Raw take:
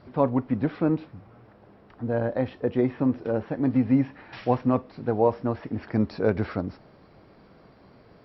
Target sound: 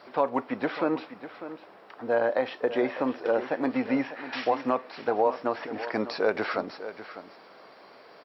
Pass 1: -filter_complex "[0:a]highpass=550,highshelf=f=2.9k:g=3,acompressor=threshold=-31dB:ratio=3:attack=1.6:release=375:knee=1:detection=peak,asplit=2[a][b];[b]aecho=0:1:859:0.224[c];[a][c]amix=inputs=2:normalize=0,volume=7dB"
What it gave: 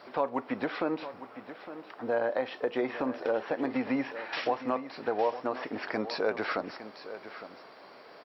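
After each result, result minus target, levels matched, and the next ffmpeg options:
echo 0.26 s late; compressor: peak gain reduction +4.5 dB
-filter_complex "[0:a]highpass=550,highshelf=f=2.9k:g=3,acompressor=threshold=-31dB:ratio=3:attack=1.6:release=375:knee=1:detection=peak,asplit=2[a][b];[b]aecho=0:1:599:0.224[c];[a][c]amix=inputs=2:normalize=0,volume=7dB"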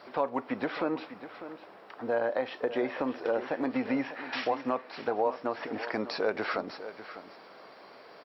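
compressor: peak gain reduction +4.5 dB
-filter_complex "[0:a]highpass=550,highshelf=f=2.9k:g=3,acompressor=threshold=-24.5dB:ratio=3:attack=1.6:release=375:knee=1:detection=peak,asplit=2[a][b];[b]aecho=0:1:599:0.224[c];[a][c]amix=inputs=2:normalize=0,volume=7dB"

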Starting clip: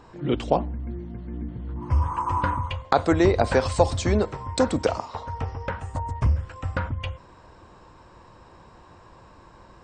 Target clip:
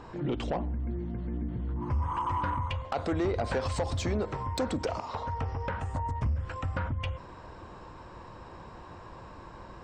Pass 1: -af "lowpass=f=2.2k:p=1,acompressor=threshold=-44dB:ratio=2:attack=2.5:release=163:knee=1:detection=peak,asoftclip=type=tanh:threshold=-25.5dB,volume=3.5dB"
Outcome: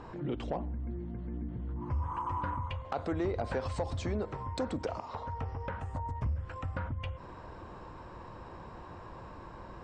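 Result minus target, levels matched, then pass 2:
compressor: peak gain reduction +5 dB; 4000 Hz band -2.0 dB
-af "lowpass=f=4.5k:p=1,acompressor=threshold=-34dB:ratio=2:attack=2.5:release=163:knee=1:detection=peak,asoftclip=type=tanh:threshold=-25.5dB,volume=3.5dB"

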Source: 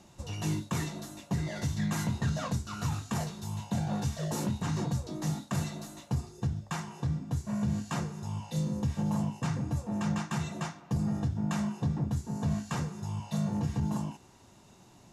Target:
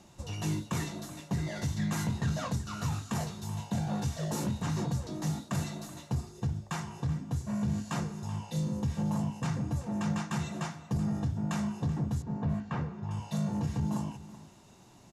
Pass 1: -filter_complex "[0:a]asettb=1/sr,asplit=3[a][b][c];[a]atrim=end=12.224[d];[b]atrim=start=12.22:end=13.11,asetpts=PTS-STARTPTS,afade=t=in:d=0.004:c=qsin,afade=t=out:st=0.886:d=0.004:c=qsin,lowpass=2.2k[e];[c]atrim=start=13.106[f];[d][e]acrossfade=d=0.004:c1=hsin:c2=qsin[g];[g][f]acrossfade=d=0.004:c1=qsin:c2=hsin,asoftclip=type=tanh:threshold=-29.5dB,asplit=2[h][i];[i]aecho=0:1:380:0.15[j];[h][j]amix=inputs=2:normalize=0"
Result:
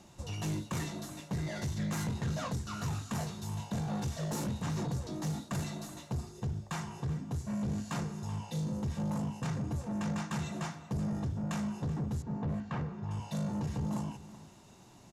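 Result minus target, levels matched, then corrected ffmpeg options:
soft clip: distortion +13 dB
-filter_complex "[0:a]asettb=1/sr,asplit=3[a][b][c];[a]atrim=end=12.224[d];[b]atrim=start=12.22:end=13.11,asetpts=PTS-STARTPTS,afade=t=in:d=0.004:c=qsin,afade=t=out:st=0.886:d=0.004:c=qsin,lowpass=2.2k[e];[c]atrim=start=13.106[f];[d][e]acrossfade=d=0.004:c1=hsin:c2=qsin[g];[g][f]acrossfade=d=0.004:c1=qsin:c2=hsin,asoftclip=type=tanh:threshold=-20dB,asplit=2[h][i];[i]aecho=0:1:380:0.15[j];[h][j]amix=inputs=2:normalize=0"

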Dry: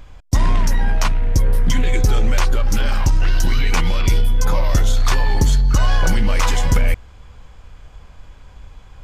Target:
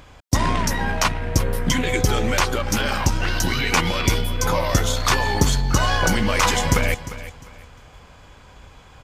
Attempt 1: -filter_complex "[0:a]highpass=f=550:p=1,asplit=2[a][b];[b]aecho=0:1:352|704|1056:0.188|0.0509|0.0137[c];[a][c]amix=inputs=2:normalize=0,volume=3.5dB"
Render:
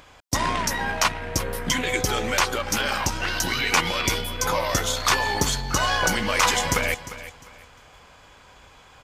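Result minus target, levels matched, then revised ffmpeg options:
125 Hz band -7.0 dB
-filter_complex "[0:a]highpass=f=160:p=1,asplit=2[a][b];[b]aecho=0:1:352|704|1056:0.188|0.0509|0.0137[c];[a][c]amix=inputs=2:normalize=0,volume=3.5dB"

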